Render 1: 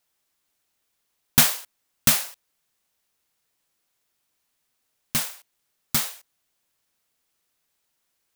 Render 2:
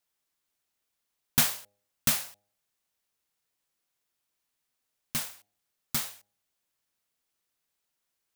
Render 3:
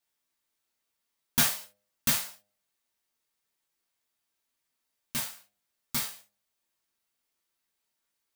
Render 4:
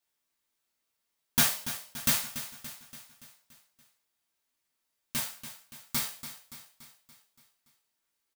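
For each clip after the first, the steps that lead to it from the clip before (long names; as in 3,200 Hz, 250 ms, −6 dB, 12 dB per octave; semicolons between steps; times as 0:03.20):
hum removal 102.1 Hz, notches 8; level −7 dB
reverb whose tail is shaped and stops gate 100 ms falling, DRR −1.5 dB; level −3.5 dB
repeating echo 286 ms, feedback 55%, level −12 dB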